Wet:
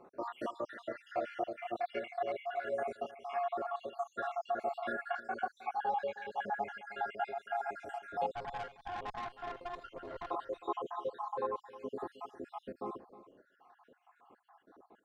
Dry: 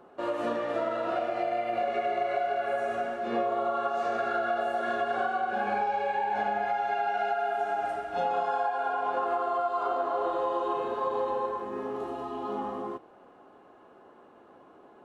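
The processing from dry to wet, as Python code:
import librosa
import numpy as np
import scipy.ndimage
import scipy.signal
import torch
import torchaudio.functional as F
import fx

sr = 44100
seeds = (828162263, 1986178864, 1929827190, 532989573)

y = fx.spec_dropout(x, sr, seeds[0], share_pct=70)
y = fx.tube_stage(y, sr, drive_db=33.0, bias=0.8, at=(8.32, 10.3))
y = y + 10.0 ** (-16.0 / 20.0) * np.pad(y, (int(313 * sr / 1000.0), 0))[:len(y)]
y = y * 10.0 ** (-3.5 / 20.0)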